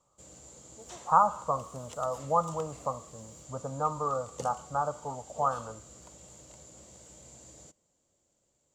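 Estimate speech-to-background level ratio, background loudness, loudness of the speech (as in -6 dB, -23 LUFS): 17.5 dB, -48.5 LUFS, -31.0 LUFS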